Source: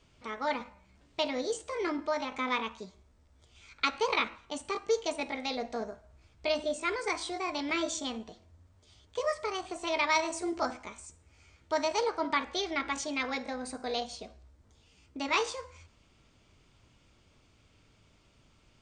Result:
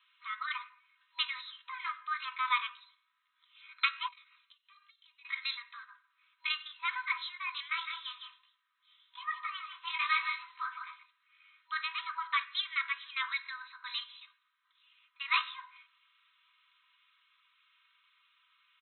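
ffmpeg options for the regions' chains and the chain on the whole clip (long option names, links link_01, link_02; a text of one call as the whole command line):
ffmpeg -i in.wav -filter_complex "[0:a]asettb=1/sr,asplit=3[link_01][link_02][link_03];[link_01]atrim=end=4.084[link_04];[link_02]atrim=start=4.08:end=5.25,asetpts=PTS-STARTPTS,afade=type=in:duration=0.004:curve=qsin,afade=type=out:start_time=1.166:duration=0.004:curve=qsin,aderivative,acompressor=threshold=-56dB:ratio=8:attack=3.2:release=140:knee=1:detection=peak[link_05];[link_03]atrim=start=5.246[link_06];[link_04][link_05]acrossfade=duration=0.004:curve1=hsin:curve2=qsin[link_07];[link_07][link_06]acrossfade=duration=0.004:curve1=qsin:curve2=hsin,asettb=1/sr,asplit=3[link_08][link_09][link_10];[link_08]atrim=end=7.684[link_11];[link_09]atrim=start=7.68:end=11.03,asetpts=PTS-STARTPTS,afade=type=in:duration=0.004:curve=qsin,afade=type=out:start_time=3.346:duration=0.004:curve=qsin,aecho=1:1:159:0.473,atrim=end_sample=147735,flanger=delay=16.5:depth=7.7:speed=1.2[link_12];[link_10]atrim=start=11.026[link_13];[link_11][link_12]acrossfade=duration=0.004:curve1=hsin:curve2=qsin[link_14];[link_14][link_13]acrossfade=duration=0.004:curve1=qsin:curve2=hsin,afftfilt=real='re*between(b*sr/4096,970,4100)':imag='im*between(b*sr/4096,970,4100)':win_size=4096:overlap=0.75,aecho=1:1:3.2:0.65" out.wav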